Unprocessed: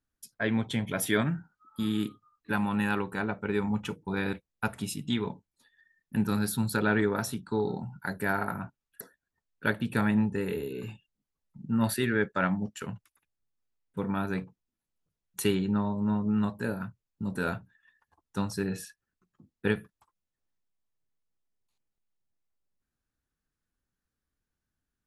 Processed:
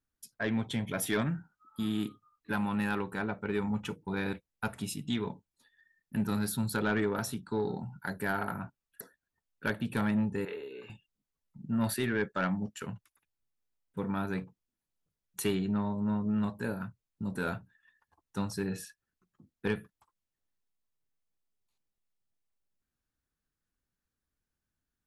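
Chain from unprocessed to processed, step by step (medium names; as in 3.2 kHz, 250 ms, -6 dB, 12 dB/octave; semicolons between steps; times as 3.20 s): saturation -19 dBFS, distortion -18 dB; 10.45–10.90 s: three-band isolator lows -21 dB, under 390 Hz, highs -22 dB, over 4.5 kHz; trim -2 dB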